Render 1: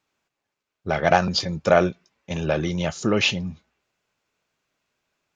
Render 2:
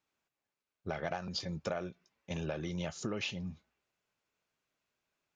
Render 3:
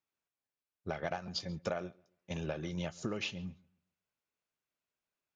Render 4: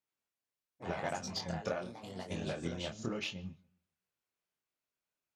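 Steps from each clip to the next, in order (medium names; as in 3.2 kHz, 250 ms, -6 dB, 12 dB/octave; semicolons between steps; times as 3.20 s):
compression 10:1, threshold -24 dBFS, peak gain reduction 13.5 dB; trim -9 dB
filtered feedback delay 137 ms, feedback 28%, low-pass 3.1 kHz, level -18 dB; upward expansion 1.5:1, over -52 dBFS; trim +1 dB
ever faster or slower copies 95 ms, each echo +3 st, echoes 3, each echo -6 dB; chorus 0.85 Hz, delay 20 ms, depth 6.7 ms; Chebyshev shaper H 7 -31 dB, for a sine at -24.5 dBFS; trim +3 dB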